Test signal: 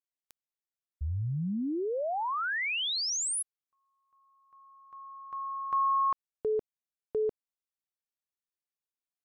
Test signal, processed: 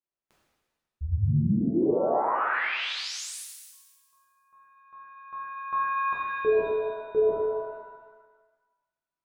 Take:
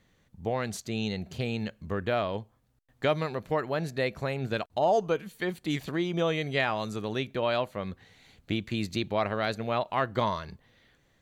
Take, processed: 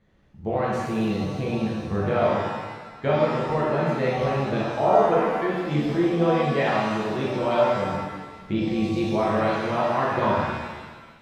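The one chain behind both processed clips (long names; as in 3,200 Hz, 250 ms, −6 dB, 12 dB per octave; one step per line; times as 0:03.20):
low-pass filter 1,200 Hz 6 dB per octave
reverb with rising layers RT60 1.3 s, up +7 semitones, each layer −8 dB, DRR −6.5 dB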